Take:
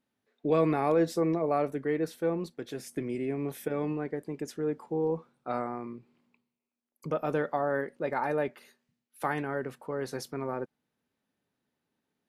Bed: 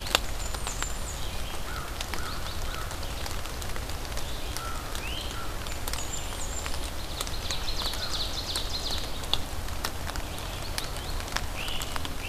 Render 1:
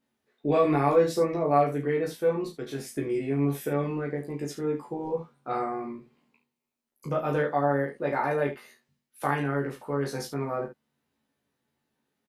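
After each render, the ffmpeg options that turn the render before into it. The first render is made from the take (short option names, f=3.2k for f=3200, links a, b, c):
-filter_complex "[0:a]asplit=2[a][b];[b]adelay=14,volume=-2dB[c];[a][c]amix=inputs=2:normalize=0,aecho=1:1:22|35|71:0.531|0.422|0.282"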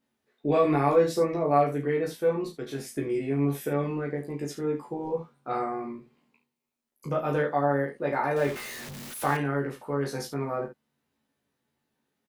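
-filter_complex "[0:a]asettb=1/sr,asplit=3[a][b][c];[a]atrim=end=8.364[d];[b]atrim=start=8.36:end=9.37,asetpts=PTS-STARTPTS,afade=t=in:d=0.004:c=qsin,afade=t=out:st=1.006:d=0.004:c=qsin,aeval=exprs='val(0)+0.5*0.02*sgn(val(0))':c=same[e];[c]atrim=start=9.366[f];[d][e]acrossfade=d=0.004:c1=hsin:c2=qsin[g];[g][f]acrossfade=d=0.004:c1=qsin:c2=hsin"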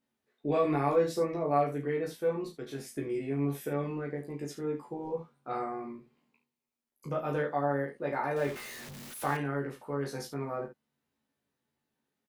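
-af "volume=-5dB"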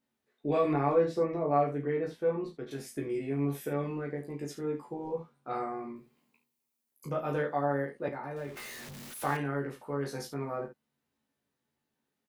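-filter_complex "[0:a]asettb=1/sr,asplit=3[a][b][c];[a]atrim=end=0.734[d];[b]atrim=start=0.73:end=2.71,asetpts=PTS-STARTPTS,afade=t=in:d=0.004:c=qsin,afade=t=out:st=1.976:d=0.004:c=qsin,aemphasis=mode=reproduction:type=75fm[e];[c]atrim=start=2.706[f];[d][e]acrossfade=d=0.004:c1=hsin:c2=qsin[g];[g][f]acrossfade=d=0.004:c1=qsin:c2=hsin,asettb=1/sr,asplit=3[h][i][j];[h]atrim=end=5.964[k];[i]atrim=start=5.96:end=7.1,asetpts=PTS-STARTPTS,afade=t=in:d=0.004:c=qsin,afade=t=out:st=1.136:d=0.004:c=qsin,highshelf=f=6.6k:g=11[l];[j]atrim=start=7.096[m];[k][l]acrossfade=d=0.004:c1=hsin:c2=qsin[n];[n][m]acrossfade=d=0.004:c1=qsin:c2=hsin,asettb=1/sr,asplit=3[o][p][q];[o]atrim=end=8.084[r];[p]atrim=start=8.08:end=8.57,asetpts=PTS-STARTPTS,afade=t=in:d=0.004:c=qsin,afade=t=out:st=0.486:d=0.004:c=qsin,acrossover=split=250|1500[s][t][u];[s]acompressor=threshold=-43dB:ratio=4[v];[t]acompressor=threshold=-40dB:ratio=4[w];[u]acompressor=threshold=-54dB:ratio=4[x];[v][w][x]amix=inputs=3:normalize=0[y];[q]atrim=start=8.566[z];[r][y]acrossfade=d=0.004:c1=hsin:c2=qsin[aa];[aa][z]acrossfade=d=0.004:c1=qsin:c2=hsin"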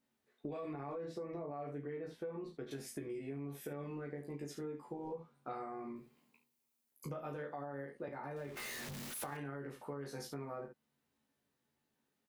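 -af "alimiter=level_in=0.5dB:limit=-24dB:level=0:latency=1:release=59,volume=-0.5dB,acompressor=threshold=-41dB:ratio=6"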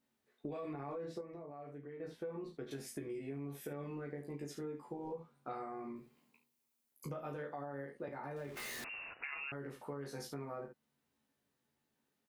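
-filter_complex "[0:a]asettb=1/sr,asplit=3[a][b][c];[a]atrim=end=8.844[d];[b]atrim=start=8.84:end=9.52,asetpts=PTS-STARTPTS,afade=t=in:d=0.004:c=qsin,afade=t=out:st=0.676:d=0.004:c=qsin,lowpass=f=2.5k:t=q:w=0.5098,lowpass=f=2.5k:t=q:w=0.6013,lowpass=f=2.5k:t=q:w=0.9,lowpass=f=2.5k:t=q:w=2.563,afreqshift=-2900[e];[c]atrim=start=9.516[f];[d][e]acrossfade=d=0.004:c1=hsin:c2=qsin[g];[g][f]acrossfade=d=0.004:c1=qsin:c2=hsin,asplit=3[h][i][j];[h]atrim=end=1.212[k];[i]atrim=start=1.208:end=2.002,asetpts=PTS-STARTPTS,volume=-6dB[l];[j]atrim=start=1.998[m];[k][l]acrossfade=d=0.004:c1=hsin:c2=hsin[n];[n][m]acrossfade=d=0.004:c1=hsin:c2=hsin"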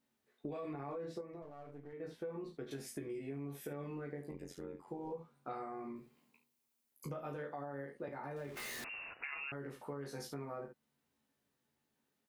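-filter_complex "[0:a]asettb=1/sr,asplit=3[a][b][c];[a]atrim=end=1.424[d];[b]atrim=start=1.42:end=1.93,asetpts=PTS-STARTPTS,afade=t=in:d=0.004:c=qsin,afade=t=out:st=0.506:d=0.004:c=qsin,aeval=exprs='if(lt(val(0),0),0.447*val(0),val(0))':c=same[e];[c]atrim=start=1.926[f];[d][e]acrossfade=d=0.004:c1=hsin:c2=qsin[g];[g][f]acrossfade=d=0.004:c1=qsin:c2=hsin,asettb=1/sr,asplit=3[h][i][j];[h]atrim=end=4.314[k];[i]atrim=start=4.31:end=4.88,asetpts=PTS-STARTPTS,afade=t=in:d=0.004:c=qsin,afade=t=out:st=0.566:d=0.004:c=qsin,tremolo=f=89:d=0.919[l];[j]atrim=start=4.876[m];[k][l]acrossfade=d=0.004:c1=hsin:c2=qsin[n];[n][m]acrossfade=d=0.004:c1=qsin:c2=hsin"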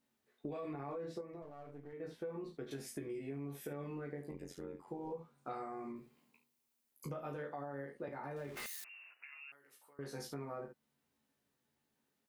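-filter_complex "[0:a]asettb=1/sr,asplit=3[a][b][c];[a]atrim=end=5.384[d];[b]atrim=start=5.38:end=5.92,asetpts=PTS-STARTPTS,afade=t=in:d=0.004:c=qsin,afade=t=out:st=0.536:d=0.004:c=qsin,equalizer=f=7.3k:t=o:w=0.88:g=7.5[e];[c]atrim=start=5.916[f];[d][e]acrossfade=d=0.004:c1=hsin:c2=qsin[g];[g][f]acrossfade=d=0.004:c1=qsin:c2=hsin,asettb=1/sr,asplit=3[h][i][j];[h]atrim=end=8.664[k];[i]atrim=start=8.66:end=9.99,asetpts=PTS-STARTPTS,afade=t=in:d=0.004:c=qsin,afade=t=out:st=1.326:d=0.004:c=qsin,aderivative[l];[j]atrim=start=9.986[m];[k][l]acrossfade=d=0.004:c1=hsin:c2=qsin[n];[n][m]acrossfade=d=0.004:c1=qsin:c2=hsin"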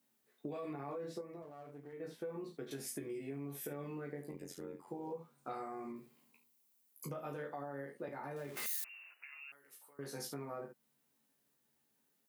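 -af "highpass=110,highshelf=f=7.5k:g=10.5"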